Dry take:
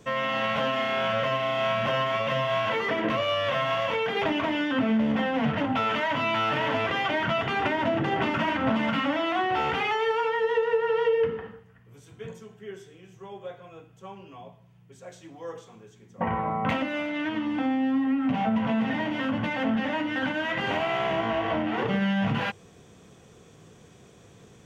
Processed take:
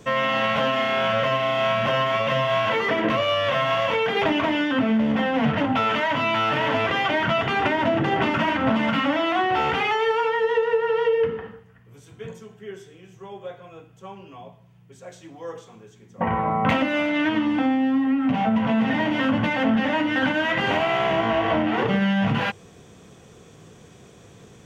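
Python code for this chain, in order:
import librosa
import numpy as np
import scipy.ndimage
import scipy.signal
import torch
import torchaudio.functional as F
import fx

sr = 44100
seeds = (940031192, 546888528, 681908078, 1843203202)

y = fx.rider(x, sr, range_db=10, speed_s=0.5)
y = y * librosa.db_to_amplitude(4.5)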